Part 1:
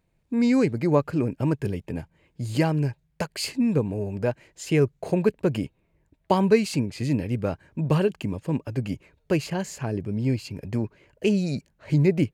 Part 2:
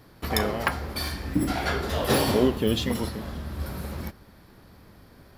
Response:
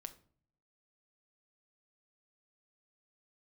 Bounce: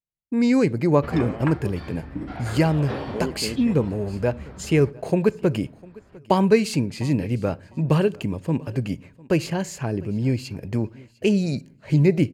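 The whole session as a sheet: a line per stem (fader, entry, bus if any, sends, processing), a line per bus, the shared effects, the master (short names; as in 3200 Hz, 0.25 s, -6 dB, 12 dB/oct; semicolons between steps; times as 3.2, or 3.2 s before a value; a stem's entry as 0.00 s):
-0.5 dB, 0.00 s, send -3 dB, echo send -21 dB, expander -47 dBFS
0.0 dB, 0.80 s, no send, no echo send, LPF 2400 Hz 12 dB/oct; auto duck -7 dB, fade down 1.80 s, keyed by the first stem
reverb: on, RT60 0.50 s, pre-delay 6 ms
echo: feedback echo 0.702 s, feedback 21%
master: dry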